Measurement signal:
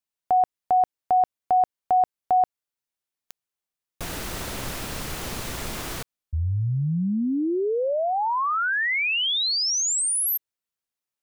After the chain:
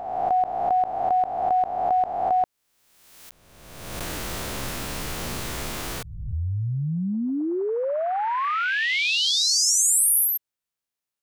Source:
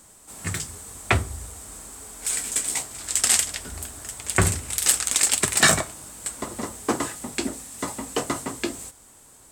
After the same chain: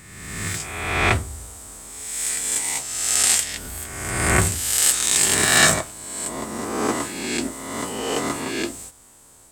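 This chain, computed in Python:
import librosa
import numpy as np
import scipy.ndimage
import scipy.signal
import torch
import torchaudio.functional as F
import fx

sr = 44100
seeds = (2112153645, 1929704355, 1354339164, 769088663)

y = fx.spec_swells(x, sr, rise_s=1.35)
y = y * librosa.db_to_amplitude(-2.0)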